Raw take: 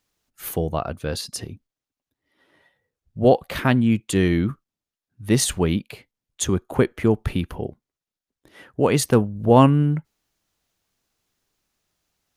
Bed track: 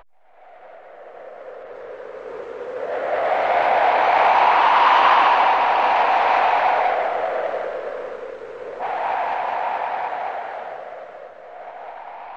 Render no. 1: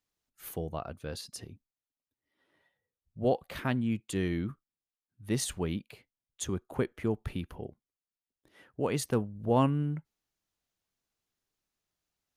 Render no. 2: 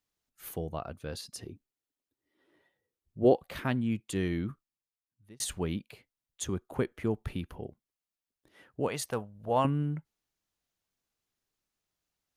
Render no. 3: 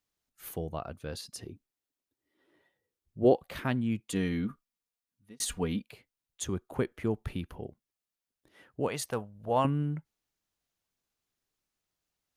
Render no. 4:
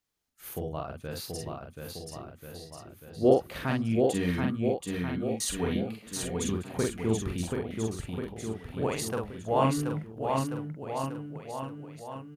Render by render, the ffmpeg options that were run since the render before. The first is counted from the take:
-af "volume=-12dB"
-filter_complex "[0:a]asettb=1/sr,asplit=3[a][b][c];[a]atrim=end=1.454[d];[b]atrim=start=1.45:end=3.35,asetpts=PTS-STARTPTS,afade=t=in:d=0.004:c=qsin,afade=t=out:st=1.896:d=0.004:c=qsin,equalizer=f=350:t=o:w=0.77:g=10[e];[c]atrim=start=3.346[f];[d][e]acrossfade=d=0.004:c1=hsin:c2=qsin[g];[g][f]acrossfade=d=0.004:c1=qsin:c2=hsin,asettb=1/sr,asplit=3[h][i][j];[h]atrim=end=8.884[k];[i]atrim=start=8.88:end=9.65,asetpts=PTS-STARTPTS,afade=t=in:d=0.004:c=qsin,afade=t=out:st=0.766:d=0.004:c=qsin,lowshelf=f=460:t=q:w=1.5:g=-7.5[l];[j]atrim=start=9.646[m];[k][l]acrossfade=d=0.004:c1=hsin:c2=qsin[n];[n][m]acrossfade=d=0.004:c1=qsin:c2=hsin,asplit=2[o][p];[o]atrim=end=5.4,asetpts=PTS-STARTPTS,afade=t=out:st=4.51:d=0.89[q];[p]atrim=start=5.4,asetpts=PTS-STARTPTS,afade=t=in:d=0.004:c=hsin[r];[q][r]concat=n=2:v=0:a=1"
-filter_complex "[0:a]asettb=1/sr,asplit=3[a][b][c];[a]atrim=end=4.094[d];[b]atrim=start=4.09:end=5.83,asetpts=PTS-STARTPTS,afade=t=in:d=0.004:c=qsin,afade=t=out:st=1.736:d=0.004:c=qsin,aecho=1:1:4.2:0.65,atrim=end_sample=76734[e];[c]atrim=start=5.826[f];[d][e]acrossfade=d=0.004:c1=hsin:c2=qsin[g];[g][f]acrossfade=d=0.004:c1=qsin:c2=hsin"
-filter_complex "[0:a]asplit=2[a][b];[b]adelay=45,volume=-2.5dB[c];[a][c]amix=inputs=2:normalize=0,aecho=1:1:730|1387|1978|2510|2989:0.631|0.398|0.251|0.158|0.1"

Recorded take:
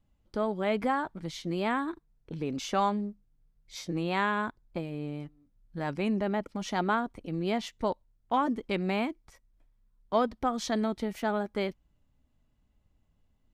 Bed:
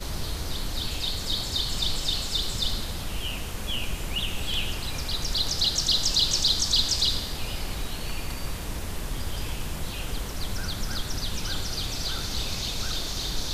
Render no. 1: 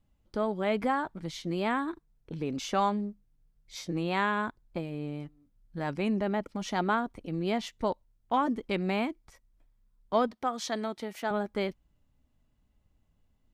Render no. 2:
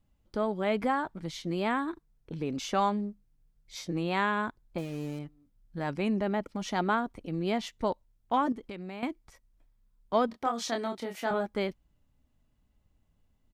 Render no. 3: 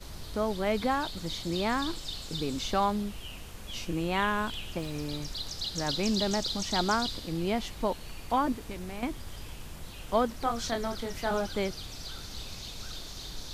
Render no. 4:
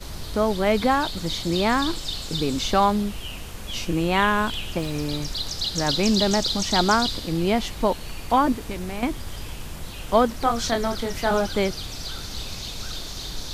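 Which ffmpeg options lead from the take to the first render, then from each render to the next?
-filter_complex "[0:a]asettb=1/sr,asplit=3[a][b][c];[a]atrim=end=10.314[d];[b]atrim=start=10.31:end=11.31,asetpts=PTS-STARTPTS,afade=t=in:d=0.004:c=qsin,afade=t=out:st=0.996:d=0.004:c=qsin,highpass=f=440:p=1[e];[c]atrim=start=11.306[f];[d][e]acrossfade=d=0.004:c1=hsin:c2=qsin[g];[g][f]acrossfade=d=0.004:c1=qsin:c2=hsin"
-filter_complex "[0:a]asettb=1/sr,asplit=3[a][b][c];[a]atrim=end=4.784[d];[b]atrim=start=4.78:end=5.19,asetpts=PTS-STARTPTS,afade=t=in:d=0.004:c=qsin,afade=t=out:st=0.406:d=0.004:c=qsin,acrusher=bits=7:mix=0:aa=0.5[e];[c]atrim=start=5.186[f];[d][e]acrossfade=d=0.004:c1=hsin:c2=qsin[g];[g][f]acrossfade=d=0.004:c1=qsin:c2=hsin,asettb=1/sr,asplit=3[h][i][j];[h]atrim=end=8.524[k];[i]atrim=start=8.52:end=9.03,asetpts=PTS-STARTPTS,afade=t=in:d=0.004:c=qsin,afade=t=out:st=0.506:d=0.004:c=qsin,acompressor=threshold=-38dB:ratio=4:attack=3.2:release=140:knee=1:detection=peak[l];[j]atrim=start=9.026[m];[k][l]acrossfade=d=0.004:c1=hsin:c2=qsin[n];[n][m]acrossfade=d=0.004:c1=qsin:c2=hsin,asplit=3[o][p][q];[o]afade=t=out:st=10.28:d=0.02[r];[p]asplit=2[s][t];[t]adelay=26,volume=-5dB[u];[s][u]amix=inputs=2:normalize=0,afade=t=in:st=10.28:d=0.02,afade=t=out:st=11.45:d=0.02[v];[q]afade=t=in:st=11.45:d=0.02[w];[r][v][w]amix=inputs=3:normalize=0"
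-filter_complex "[1:a]volume=-11dB[a];[0:a][a]amix=inputs=2:normalize=0"
-af "volume=8dB"

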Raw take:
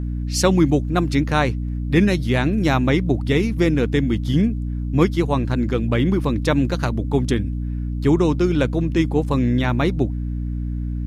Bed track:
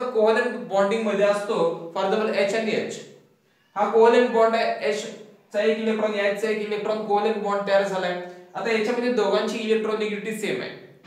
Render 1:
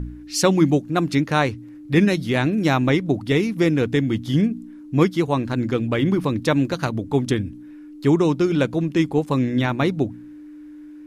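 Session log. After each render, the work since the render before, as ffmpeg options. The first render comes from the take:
-af "bandreject=f=60:t=h:w=4,bandreject=f=120:t=h:w=4,bandreject=f=180:t=h:w=4,bandreject=f=240:t=h:w=4"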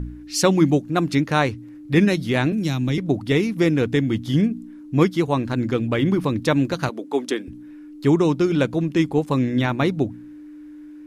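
-filter_complex "[0:a]asettb=1/sr,asplit=3[a][b][c];[a]atrim=end=2.524[d];[b]atrim=start=2.52:end=2.98,asetpts=PTS-STARTPTS,afade=t=in:d=0.004:c=qsin,afade=t=out:st=0.456:d=0.004:c=qsin,acrossover=split=270|3000[e][f][g];[f]acompressor=threshold=-36dB:ratio=3:attack=3.2:release=140:knee=2.83:detection=peak[h];[e][h][g]amix=inputs=3:normalize=0[i];[c]atrim=start=2.976[j];[d][i]acrossfade=d=0.004:c1=hsin:c2=qsin[k];[k][j]acrossfade=d=0.004:c1=qsin:c2=hsin,asettb=1/sr,asplit=3[l][m][n];[l]atrim=end=6.894[o];[m]atrim=start=6.89:end=7.48,asetpts=PTS-STARTPTS,afade=t=in:d=0.004:c=qsin,afade=t=out:st=0.586:d=0.004:c=qsin,highpass=f=290:w=0.5412,highpass=f=290:w=1.3066[p];[n]atrim=start=7.476[q];[o][p]acrossfade=d=0.004:c1=hsin:c2=qsin[r];[r][q]acrossfade=d=0.004:c1=qsin:c2=hsin"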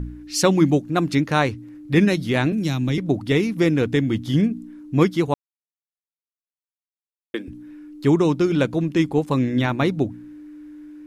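-filter_complex "[0:a]asplit=3[a][b][c];[a]atrim=end=5.34,asetpts=PTS-STARTPTS,afade=t=out:st=5.336:d=0.004:c=hsin[d];[b]atrim=start=5.34:end=7.34,asetpts=PTS-STARTPTS,volume=0[e];[c]atrim=start=7.34,asetpts=PTS-STARTPTS,afade=t=in:d=0.004:c=hsin[f];[d][e][f]concat=n=3:v=0:a=1"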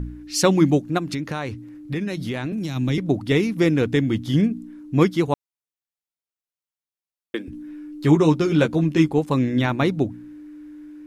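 -filter_complex "[0:a]asplit=3[a][b][c];[a]afade=t=out:st=0.97:d=0.02[d];[b]acompressor=threshold=-23dB:ratio=6:attack=3.2:release=140:knee=1:detection=peak,afade=t=in:st=0.97:d=0.02,afade=t=out:st=2.75:d=0.02[e];[c]afade=t=in:st=2.75:d=0.02[f];[d][e][f]amix=inputs=3:normalize=0,asettb=1/sr,asplit=3[g][h][i];[g]atrim=end=7.514[j];[h]atrim=start=7.51:end=9.08,asetpts=PTS-STARTPTS,afade=t=in:d=0.004:c=qsin,afade=t=out:st=1.566:d=0.004:c=qsin,asplit=2[k][l];[l]adelay=13,volume=-4dB[m];[k][m]amix=inputs=2:normalize=0,atrim=end_sample=69237[n];[i]atrim=start=9.076[o];[j][n]acrossfade=d=0.004:c1=hsin:c2=qsin[p];[p][o]acrossfade=d=0.004:c1=qsin:c2=hsin"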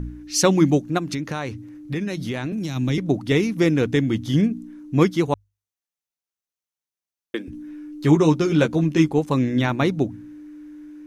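-af "equalizer=f=6.1k:w=6.9:g=6,bandreject=f=50:t=h:w=6,bandreject=f=100:t=h:w=6"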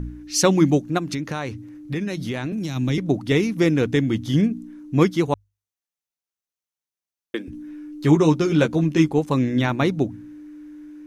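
-af anull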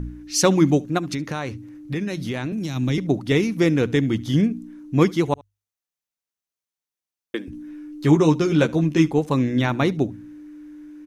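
-af "aecho=1:1:72:0.0631"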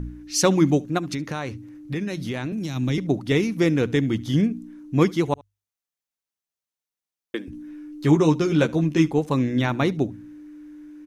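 -af "volume=-1.5dB"

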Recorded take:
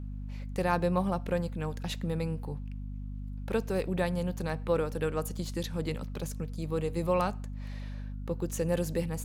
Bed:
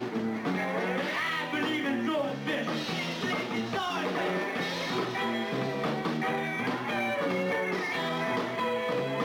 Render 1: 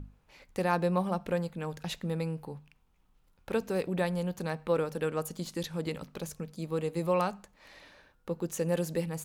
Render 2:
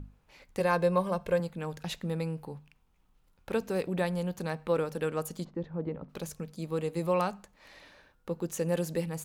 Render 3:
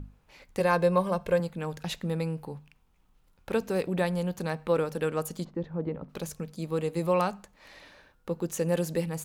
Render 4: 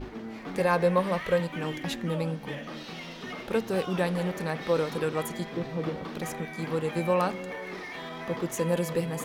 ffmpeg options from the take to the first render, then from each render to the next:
-af "bandreject=f=50:t=h:w=6,bandreject=f=100:t=h:w=6,bandreject=f=150:t=h:w=6,bandreject=f=200:t=h:w=6,bandreject=f=250:t=h:w=6"
-filter_complex "[0:a]asettb=1/sr,asplit=3[a][b][c];[a]atrim=end=0.604[d];[b]atrim=start=0.6:end=1.4,asetpts=PTS-STARTPTS,afade=t=in:d=0.004:c=qsin,afade=t=out:st=0.796:d=0.004:c=qsin,aecho=1:1:1.9:0.65,atrim=end_sample=35280[e];[c]atrim=start=1.396[f];[d][e]acrossfade=d=0.004:c1=hsin:c2=qsin[g];[g][f]acrossfade=d=0.004:c1=qsin:c2=hsin,asplit=3[h][i][j];[h]afade=t=out:st=5.43:d=0.02[k];[i]lowpass=1k,afade=t=in:st=5.43:d=0.02,afade=t=out:st=6.08:d=0.02[l];[j]afade=t=in:st=6.08:d=0.02[m];[k][l][m]amix=inputs=3:normalize=0"
-af "volume=2.5dB"
-filter_complex "[1:a]volume=-8dB[a];[0:a][a]amix=inputs=2:normalize=0"

